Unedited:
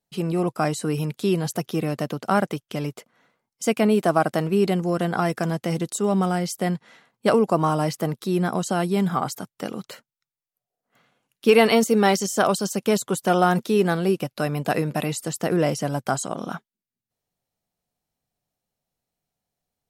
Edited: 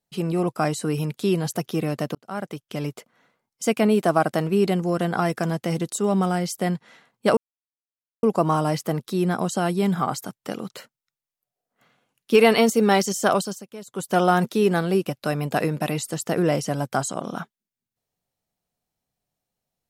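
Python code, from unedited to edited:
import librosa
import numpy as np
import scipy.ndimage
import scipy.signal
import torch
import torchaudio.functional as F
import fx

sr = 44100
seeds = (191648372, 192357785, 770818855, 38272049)

y = fx.edit(x, sr, fx.fade_in_span(start_s=2.15, length_s=0.71),
    fx.insert_silence(at_s=7.37, length_s=0.86),
    fx.fade_down_up(start_s=12.49, length_s=0.8, db=-18.0, fade_s=0.3), tone=tone)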